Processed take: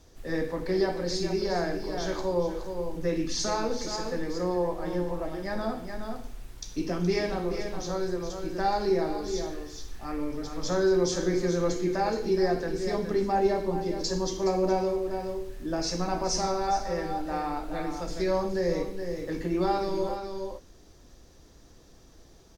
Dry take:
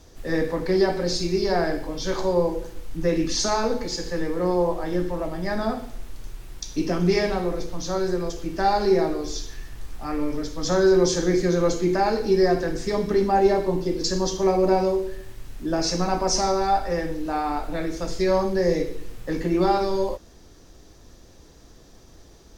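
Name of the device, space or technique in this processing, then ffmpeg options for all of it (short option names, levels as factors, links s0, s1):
ducked delay: -filter_complex "[0:a]asplit=3[s0][s1][s2];[s1]adelay=420,volume=0.562[s3];[s2]apad=whole_len=1014045[s4];[s3][s4]sidechaincompress=threshold=0.0794:ratio=8:attack=16:release=745[s5];[s0][s5]amix=inputs=2:normalize=0,volume=0.501"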